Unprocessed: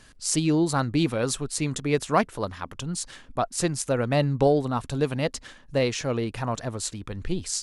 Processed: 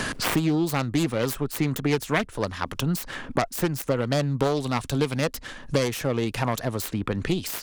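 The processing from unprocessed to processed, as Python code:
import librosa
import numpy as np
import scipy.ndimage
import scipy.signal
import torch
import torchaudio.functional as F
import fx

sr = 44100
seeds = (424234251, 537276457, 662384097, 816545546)

y = fx.self_delay(x, sr, depth_ms=0.29)
y = fx.band_squash(y, sr, depth_pct=100)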